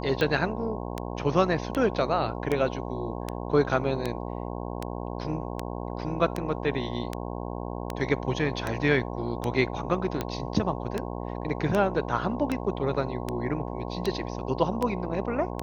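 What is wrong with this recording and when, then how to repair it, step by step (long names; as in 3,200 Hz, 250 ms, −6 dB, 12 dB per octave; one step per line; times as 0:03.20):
mains buzz 60 Hz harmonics 18 −34 dBFS
scratch tick 78 rpm −14 dBFS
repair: click removal
hum removal 60 Hz, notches 18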